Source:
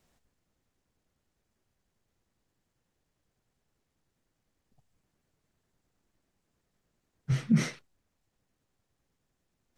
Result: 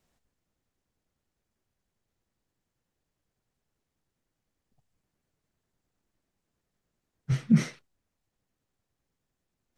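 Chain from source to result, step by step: upward expansion 1.5:1, over -34 dBFS; trim +4 dB

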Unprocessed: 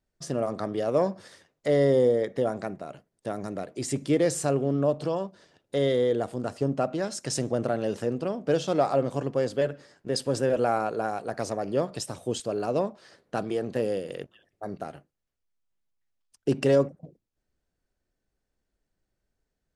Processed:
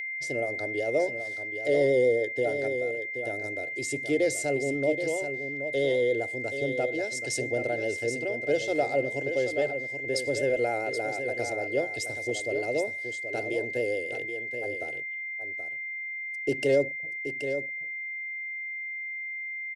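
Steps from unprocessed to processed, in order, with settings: vibrato 7.4 Hz 50 cents; whistle 2.1 kHz -27 dBFS; static phaser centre 460 Hz, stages 4; delay 777 ms -8.5 dB; trim -1 dB

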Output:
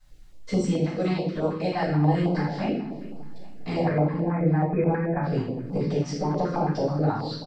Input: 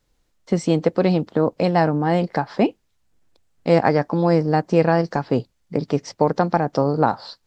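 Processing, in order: 0.83–1.86 s: bass shelf 320 Hz -11 dB; compression 2.5:1, threshold -36 dBFS, peak gain reduction 17 dB; 3.83–5.23 s: brick-wall FIR low-pass 2.6 kHz; feedback delay 405 ms, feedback 52%, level -19 dB; simulated room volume 240 m³, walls mixed, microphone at 6.5 m; step-sequenced notch 9.3 Hz 440–1800 Hz; trim -6.5 dB

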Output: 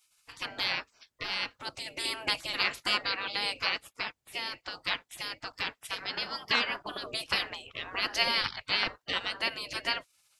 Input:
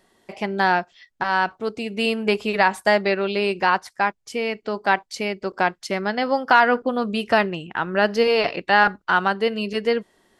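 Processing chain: spectral gate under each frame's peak -20 dB weak; trim +3.5 dB

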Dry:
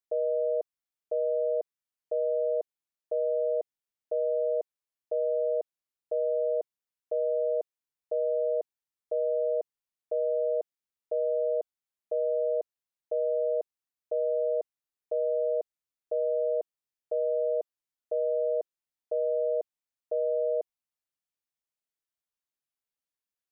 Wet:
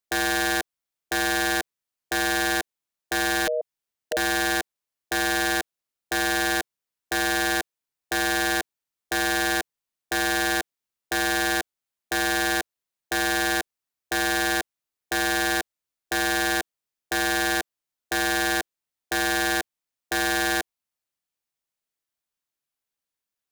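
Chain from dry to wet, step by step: 3.47–4.17 s: dynamic bell 330 Hz, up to -8 dB, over -47 dBFS, Q 1.6; integer overflow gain 23.5 dB; trim +4.5 dB

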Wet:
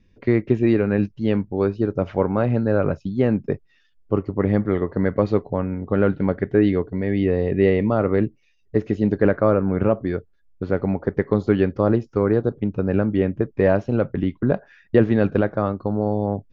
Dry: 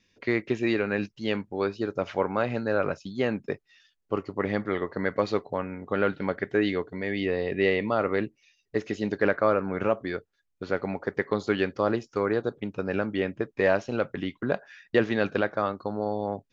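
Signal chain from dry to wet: tilt EQ -4 dB/octave; trim +1.5 dB

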